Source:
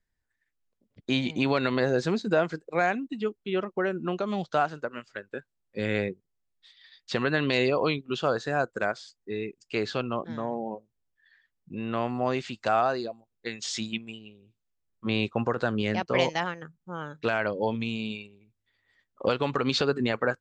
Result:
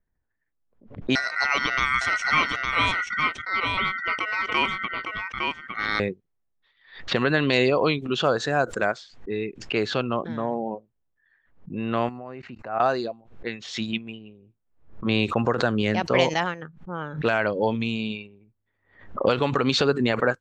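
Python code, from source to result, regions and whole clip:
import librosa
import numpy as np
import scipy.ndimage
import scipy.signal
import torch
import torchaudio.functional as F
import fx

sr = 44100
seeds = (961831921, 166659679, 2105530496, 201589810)

y = fx.chain(x, sr, fx.ring_mod(carrier_hz=1700.0),
    fx.echo_single(ms=859, db=-4.0), at=(1.15, 6.0))
y = fx.chain(y, sr, fx.peak_eq(hz=3400.0, db=-14.0, octaves=0.21),
    fx.level_steps(step_db=21), at=(12.09, 12.8))
y = fx.notch(y, sr, hz=4900.0, q=15.0)
y = fx.env_lowpass(y, sr, base_hz=1200.0, full_db=-23.0)
y = fx.pre_swell(y, sr, db_per_s=120.0)
y = y * librosa.db_to_amplitude(4.0)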